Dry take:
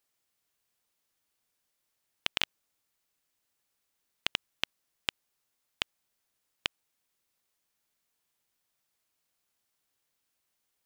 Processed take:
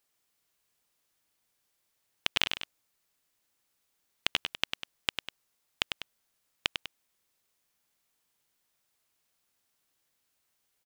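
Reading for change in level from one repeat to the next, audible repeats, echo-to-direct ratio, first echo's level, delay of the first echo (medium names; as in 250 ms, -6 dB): -6.0 dB, 2, -6.0 dB, -7.0 dB, 99 ms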